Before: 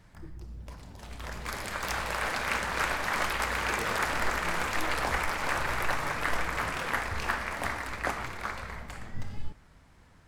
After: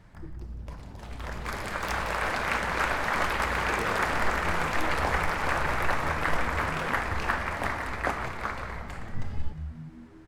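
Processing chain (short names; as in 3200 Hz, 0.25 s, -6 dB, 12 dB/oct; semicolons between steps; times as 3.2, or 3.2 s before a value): high shelf 3100 Hz -8 dB; frequency-shifting echo 0.179 s, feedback 52%, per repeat -82 Hz, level -12 dB; gain +3.5 dB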